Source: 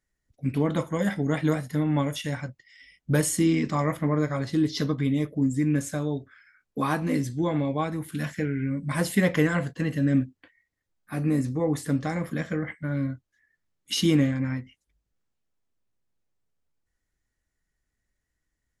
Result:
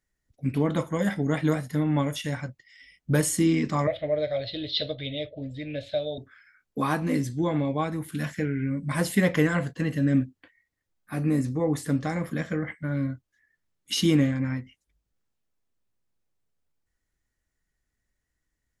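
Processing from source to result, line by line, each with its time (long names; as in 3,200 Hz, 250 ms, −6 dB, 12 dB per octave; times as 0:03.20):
0:03.87–0:06.18: drawn EQ curve 110 Hz 0 dB, 170 Hz −19 dB, 400 Hz −9 dB, 620 Hz +11 dB, 1,000 Hz −22 dB, 2,500 Hz +3 dB, 3,900 Hz +13 dB, 6,300 Hz −24 dB, 9,100 Hz −29 dB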